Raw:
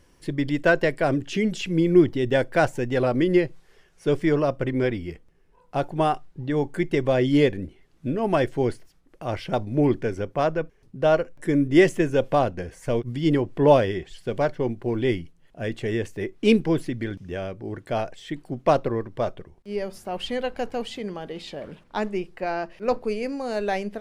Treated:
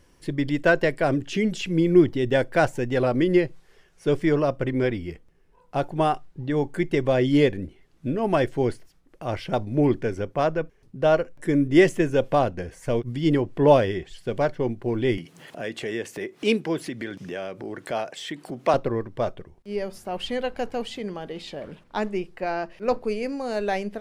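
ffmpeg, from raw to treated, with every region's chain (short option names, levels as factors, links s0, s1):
-filter_complex "[0:a]asettb=1/sr,asplit=3[s0][s1][s2];[s0]atrim=end=15.184[s3];[s1]atrim=start=15.18:end=18.74,asetpts=PTS-STARTPTS,afade=t=in:d=0.004:c=qsin,afade=t=out:st=3.556:d=0.004:c=qsin,highpass=f=120:w=0.5412,highpass=f=120:w=1.3066,lowshelf=f=260:g=-10.5,acompressor=mode=upward:threshold=0.0501:ratio=2.5:attack=3.2:release=140:knee=2.83:detection=peak[s4];[s2]atrim=start=18.736[s5];[s3][s4]acrossfade=d=0.004:c1=hsin:c2=qsin[s6];[s6][s5]acrossfade=d=0.004:c1=qsin:c2=hsin"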